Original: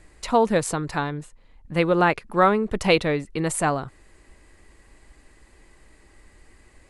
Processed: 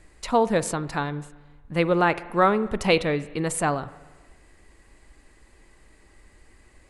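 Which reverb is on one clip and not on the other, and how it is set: spring tank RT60 1.3 s, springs 41/47 ms, chirp 40 ms, DRR 16 dB; trim -1.5 dB

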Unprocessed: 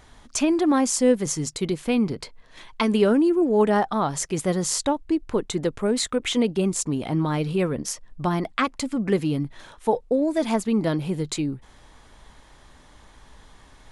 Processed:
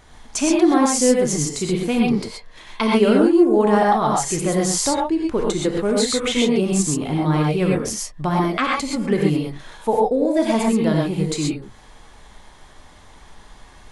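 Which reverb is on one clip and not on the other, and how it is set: gated-style reverb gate 150 ms rising, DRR -2 dB; trim +1 dB

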